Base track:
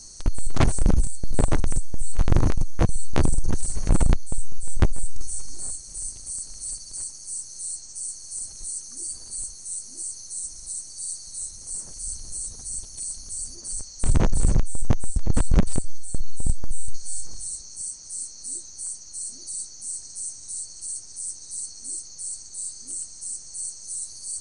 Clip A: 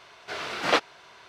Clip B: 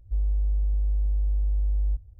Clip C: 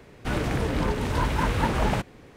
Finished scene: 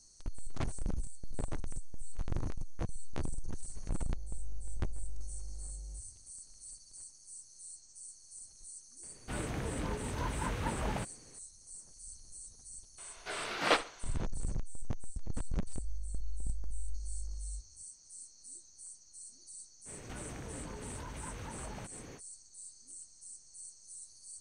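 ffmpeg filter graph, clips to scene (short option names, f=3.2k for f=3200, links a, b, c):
-filter_complex "[2:a]asplit=2[a][b];[3:a]asplit=2[c][d];[0:a]volume=-17dB[e];[a]highpass=f=66:w=0.5412,highpass=f=66:w=1.3066[f];[1:a]aecho=1:1:69|138|207:0.158|0.0491|0.0152[g];[d]acompressor=threshold=-42dB:ratio=6:attack=3.2:release=140:knee=1:detection=peak[h];[f]atrim=end=2.19,asetpts=PTS-STARTPTS,volume=-10.5dB,afade=t=in:d=0.004:c=hsin,afade=t=out:st=2.186:d=0.004:c=hsin,adelay=4030[i];[c]atrim=end=2.36,asetpts=PTS-STARTPTS,volume=-11.5dB,afade=t=in:d=0.004:c=hsin,afade=t=out:st=2.356:d=0.004:c=hsin,adelay=9030[j];[g]atrim=end=1.28,asetpts=PTS-STARTPTS,volume=-5.5dB,afade=t=in:d=0.004:c=hsin,afade=t=out:st=1.276:d=0.004:c=hsin,adelay=12980[k];[b]atrim=end=2.19,asetpts=PTS-STARTPTS,volume=-17.5dB,afade=t=in:d=0.004:c=hsin,afade=t=out:st=2.186:d=0.004:c=hsin,adelay=15640[l];[h]atrim=end=2.36,asetpts=PTS-STARTPTS,volume=-0.5dB,afade=t=in:d=0.05,afade=t=out:st=2.31:d=0.05,adelay=19850[m];[e][i][j][k][l][m]amix=inputs=6:normalize=0"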